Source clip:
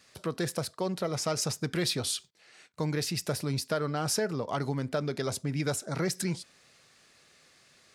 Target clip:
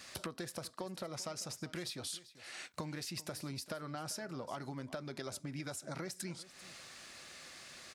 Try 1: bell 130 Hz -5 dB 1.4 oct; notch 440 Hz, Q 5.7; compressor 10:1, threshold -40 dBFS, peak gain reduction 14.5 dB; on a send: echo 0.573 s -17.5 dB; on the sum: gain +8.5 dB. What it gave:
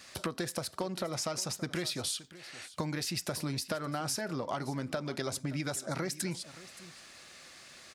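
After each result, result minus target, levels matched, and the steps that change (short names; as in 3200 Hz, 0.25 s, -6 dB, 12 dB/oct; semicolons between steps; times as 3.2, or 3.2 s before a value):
echo 0.181 s late; compressor: peak gain reduction -7.5 dB
change: echo 0.392 s -17.5 dB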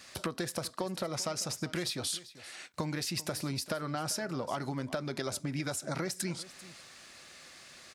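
compressor: peak gain reduction -7.5 dB
change: compressor 10:1, threshold -48.5 dBFS, peak gain reduction 22.5 dB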